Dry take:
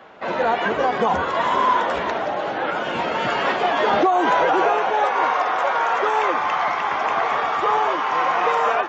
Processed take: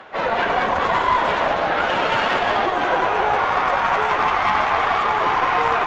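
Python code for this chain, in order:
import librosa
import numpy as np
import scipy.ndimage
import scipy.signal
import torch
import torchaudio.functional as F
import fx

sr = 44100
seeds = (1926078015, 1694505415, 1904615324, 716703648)

p1 = fx.over_compress(x, sr, threshold_db=-24.0, ratio=-1.0)
p2 = x + (p1 * 10.0 ** (1.5 / 20.0))
p3 = fx.high_shelf(p2, sr, hz=5800.0, db=-6.5)
p4 = p3 + fx.echo_multitap(p3, sr, ms=(145, 263, 290, 436), db=(-9.5, -12.0, -7.0, -19.0), dry=0)
p5 = fx.stretch_vocoder_free(p4, sr, factor=0.66)
p6 = fx.peak_eq(p5, sr, hz=230.0, db=-6.0, octaves=2.9)
y = fx.cheby_harmonics(p6, sr, harmonics=(4,), levels_db=(-18,), full_scale_db=-6.0)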